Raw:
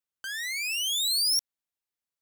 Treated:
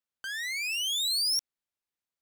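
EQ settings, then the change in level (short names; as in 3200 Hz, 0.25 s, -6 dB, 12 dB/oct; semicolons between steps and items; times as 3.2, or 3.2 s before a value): high shelf 6900 Hz -6.5 dB; 0.0 dB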